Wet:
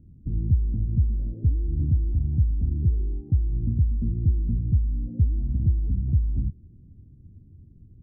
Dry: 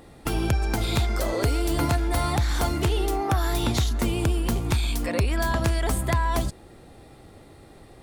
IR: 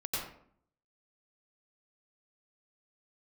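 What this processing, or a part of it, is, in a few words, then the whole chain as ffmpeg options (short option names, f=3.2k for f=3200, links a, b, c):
the neighbour's flat through the wall: -af "lowpass=f=220:w=0.5412,lowpass=f=220:w=1.3066,equalizer=f=87:t=o:w=0.72:g=6"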